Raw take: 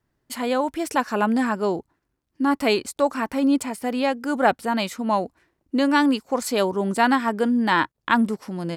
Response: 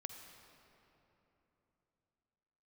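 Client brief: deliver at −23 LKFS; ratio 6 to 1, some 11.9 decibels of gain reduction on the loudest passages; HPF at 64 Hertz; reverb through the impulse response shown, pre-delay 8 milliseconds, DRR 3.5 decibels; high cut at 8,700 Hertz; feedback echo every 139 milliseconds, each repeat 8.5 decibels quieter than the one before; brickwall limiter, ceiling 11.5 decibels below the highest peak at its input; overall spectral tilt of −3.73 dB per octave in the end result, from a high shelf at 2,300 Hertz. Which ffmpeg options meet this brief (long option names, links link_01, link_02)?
-filter_complex "[0:a]highpass=64,lowpass=8700,highshelf=frequency=2300:gain=5.5,acompressor=threshold=-25dB:ratio=6,alimiter=limit=-20.5dB:level=0:latency=1,aecho=1:1:139|278|417|556:0.376|0.143|0.0543|0.0206,asplit=2[link_01][link_02];[1:a]atrim=start_sample=2205,adelay=8[link_03];[link_02][link_03]afir=irnorm=-1:irlink=0,volume=0dB[link_04];[link_01][link_04]amix=inputs=2:normalize=0,volume=5dB"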